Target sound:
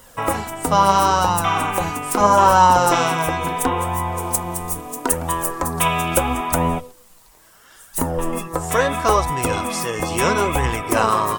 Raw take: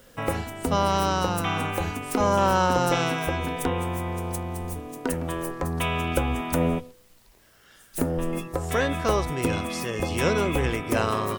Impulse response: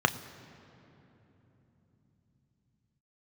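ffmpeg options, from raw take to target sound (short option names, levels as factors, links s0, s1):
-filter_complex "[0:a]equalizer=f=1000:t=o:w=1:g=9,equalizer=f=8000:t=o:w=1:g=6,equalizer=f=16000:t=o:w=1:g=7,flanger=delay=1:depth=5.6:regen=44:speed=0.75:shape=sinusoidal,asettb=1/sr,asplit=3[s0][s1][s2];[s0]atrim=end=4.194[s3];[s1]atrim=start=4.19:end=6.34,asetpts=PTS-STARTPTS,afade=t=in:d=0.004:c=qsin,afade=t=out:st=2.146:d=0.004:c=qsin,highshelf=f=4800:g=6[s4];[s2]atrim=start=6.336[s5];[s3][s4]acrossfade=d=0.004:c1=hsin:c2=qsin[s6];[s6][s5]acrossfade=d=0.004:c1=qsin:c2=hsin,volume=2.11"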